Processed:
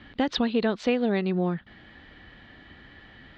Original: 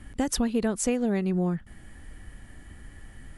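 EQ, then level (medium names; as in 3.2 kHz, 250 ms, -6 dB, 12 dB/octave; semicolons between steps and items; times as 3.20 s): high-pass 310 Hz 6 dB/octave; resonant low-pass 3.9 kHz, resonance Q 3.9; distance through air 220 m; +5.0 dB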